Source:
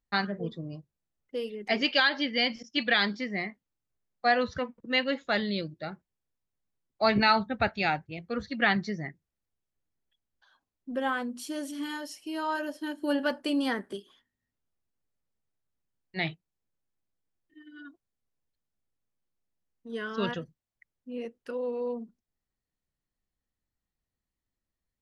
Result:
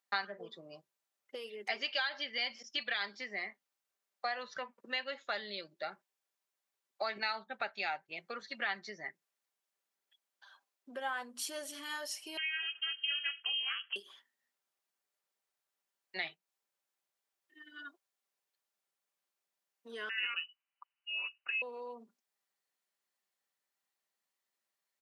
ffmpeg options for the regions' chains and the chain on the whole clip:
ffmpeg -i in.wav -filter_complex "[0:a]asettb=1/sr,asplit=3[link_01][link_02][link_03];[link_01]atrim=end=12.374[link_04];[link_02]atrim=start=12.37:end=13.96,asetpts=PTS-STARTPTS,afade=type=in:duration=0.004:curve=qsin,afade=type=out:start_time=1.586:duration=0.004:curve=qsin,acrossover=split=2600[link_05][link_06];[link_06]acompressor=threshold=-51dB:ratio=4:attack=1:release=60[link_07];[link_05][link_07]amix=inputs=2:normalize=0,lowpass=frequency=2800:width_type=q:width=0.5098,lowpass=frequency=2800:width_type=q:width=0.6013,lowpass=frequency=2800:width_type=q:width=0.9,lowpass=frequency=2800:width_type=q:width=2.563,afreqshift=-3300,aeval=exprs='val(0)*sin(2*PI*160*n/s)':channel_layout=same[link_08];[link_03]atrim=start=13.956[link_09];[link_04][link_08]acrossfade=duration=0.004:curve1=hsin:curve2=qsin[link_10];[link_10][link_09]acrossfade=duration=0.004:curve1=qsin:curve2=hsin,asettb=1/sr,asplit=3[link_11][link_12][link_13];[link_11]atrim=end=20.094[link_14];[link_12]atrim=start=20.09:end=21.62,asetpts=PTS-STARTPTS,afade=type=in:duration=0.004:curve=qsin,afade=type=out:start_time=1.526:duration=0.004:curve=qsin,highpass=frequency=200:poles=1,lowpass=frequency=2600:width_type=q:width=0.5098,lowpass=frequency=2600:width_type=q:width=0.6013,lowpass=frequency=2600:width_type=q:width=0.9,lowpass=frequency=2600:width_type=q:width=2.563,afreqshift=-3100[link_15];[link_13]atrim=start=21.616[link_16];[link_14][link_15]acrossfade=duration=0.004:curve1=hsin:curve2=qsin[link_17];[link_17][link_16]acrossfade=duration=0.004:curve1=qsin:curve2=hsin,acompressor=threshold=-39dB:ratio=4,highpass=650,aecho=1:1:5.1:0.32,volume=4.5dB" out.wav

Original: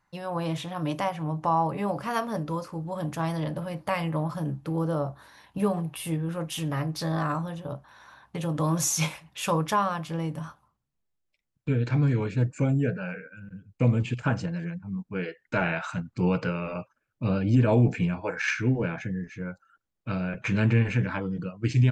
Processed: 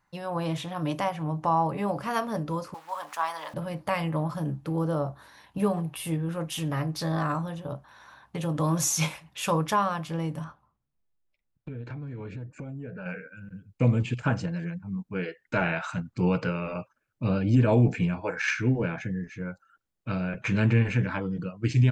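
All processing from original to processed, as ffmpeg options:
ffmpeg -i in.wav -filter_complex "[0:a]asettb=1/sr,asplit=3[link_01][link_02][link_03];[link_01]atrim=end=2.744[link_04];[link_02]atrim=start=2.74:end=3.54,asetpts=PTS-STARTPTS,afade=type=in:duration=0.004:curve=qsin,afade=type=out:start_time=0.796:duration=0.004:curve=qsin,aeval=exprs='val(0)*gte(abs(val(0)),0.00531)':channel_layout=same,highpass=frequency=1000:width_type=q:width=2.2[link_05];[link_03]atrim=start=3.536[link_06];[link_04][link_05]acrossfade=duration=0.004:curve1=hsin:curve2=qsin[link_07];[link_07][link_06]acrossfade=duration=0.004:curve1=qsin:curve2=hsin,asettb=1/sr,asplit=3[link_08][link_09][link_10];[link_08]atrim=end=10.444[link_11];[link_09]atrim=start=10.44:end=13.06,asetpts=PTS-STARTPTS,afade=type=in:duration=0.004:curve=qsin,afade=type=out:start_time=2.616:duration=0.004:curve=qsin,lowpass=frequency=1800:poles=1,acompressor=threshold=-33dB:ratio=10:attack=3.2:release=140:knee=1:detection=peak,asubboost=boost=3:cutoff=74[link_12];[link_10]atrim=start=13.056[link_13];[link_11][link_12]acrossfade=duration=0.004:curve1=hsin:curve2=qsin[link_14];[link_14][link_13]acrossfade=duration=0.004:curve1=qsin:curve2=hsin" out.wav

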